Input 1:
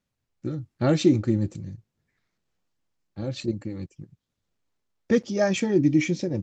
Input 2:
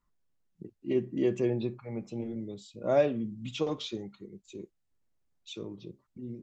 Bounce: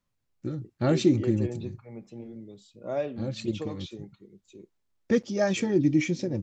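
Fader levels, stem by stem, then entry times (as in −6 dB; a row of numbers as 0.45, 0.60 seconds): −2.5, −5.5 decibels; 0.00, 0.00 seconds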